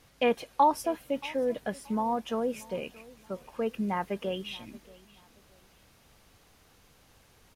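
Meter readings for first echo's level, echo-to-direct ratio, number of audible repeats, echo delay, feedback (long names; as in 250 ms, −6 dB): −22.0 dB, −21.5 dB, 2, 628 ms, 31%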